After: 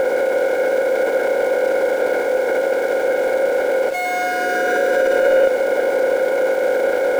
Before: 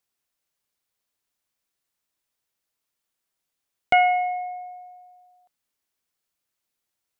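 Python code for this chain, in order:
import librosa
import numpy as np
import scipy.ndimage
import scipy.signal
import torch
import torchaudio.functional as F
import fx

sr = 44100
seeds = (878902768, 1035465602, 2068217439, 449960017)

y = fx.bin_compress(x, sr, power=0.2)
y = scipy.signal.sosfilt(scipy.signal.butter(4, 280.0, 'highpass', fs=sr, output='sos'), y)
y = fx.high_shelf(y, sr, hz=2400.0, db=-9.5)
y = fx.over_compress(y, sr, threshold_db=-27.0, ratio=-1.0)
y = fx.leveller(y, sr, passes=1)
y = fx.formant_shift(y, sr, semitones=-5)
y = np.where(np.abs(y) >= 10.0 ** (-40.0 / 20.0), y, 0.0)
y = y + 10.0 ** (-11.0 / 20.0) * np.pad(y, (int(357 * sr / 1000.0), 0))[:len(y)]
y = y * 10.0 ** (9.0 / 20.0)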